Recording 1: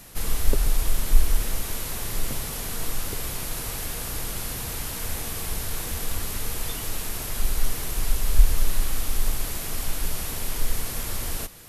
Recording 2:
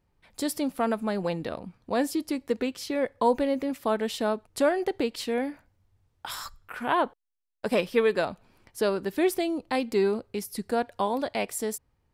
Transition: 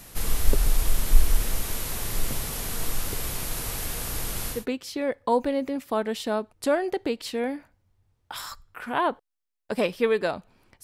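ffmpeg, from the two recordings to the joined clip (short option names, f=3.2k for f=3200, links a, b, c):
-filter_complex "[0:a]apad=whole_dur=10.83,atrim=end=10.83,atrim=end=4.66,asetpts=PTS-STARTPTS[a];[1:a]atrim=start=2.42:end=8.77,asetpts=PTS-STARTPTS[b];[a][b]acrossfade=d=0.18:c1=tri:c2=tri"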